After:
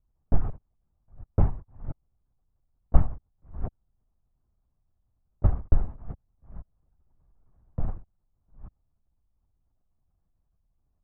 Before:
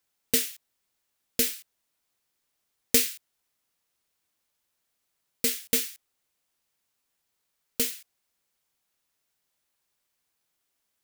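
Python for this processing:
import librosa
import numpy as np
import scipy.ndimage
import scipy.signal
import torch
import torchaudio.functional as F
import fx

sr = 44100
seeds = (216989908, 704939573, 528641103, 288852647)

y = fx.reverse_delay(x, sr, ms=413, wet_db=-14.0)
y = np.abs(y)
y = fx.lpc_vocoder(y, sr, seeds[0], excitation='whisper', order=16)
y = scipy.signal.sosfilt(scipy.signal.butter(4, 1100.0, 'lowpass', fs=sr, output='sos'), y)
y = fx.low_shelf(y, sr, hz=430.0, db=11.0)
y = fx.band_squash(y, sr, depth_pct=40, at=(5.84, 7.88))
y = y * librosa.db_to_amplitude(-1.5)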